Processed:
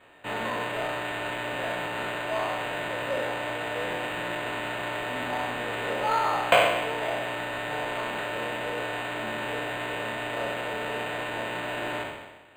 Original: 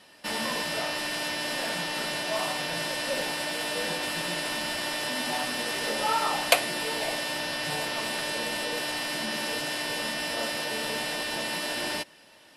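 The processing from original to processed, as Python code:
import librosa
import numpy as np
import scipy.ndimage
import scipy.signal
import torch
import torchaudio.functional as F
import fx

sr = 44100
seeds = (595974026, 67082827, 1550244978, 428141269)

y = fx.spec_trails(x, sr, decay_s=1.19)
y = fx.bandpass_edges(y, sr, low_hz=280.0, high_hz=5700.0)
y = np.interp(np.arange(len(y)), np.arange(len(y))[::8], y[::8])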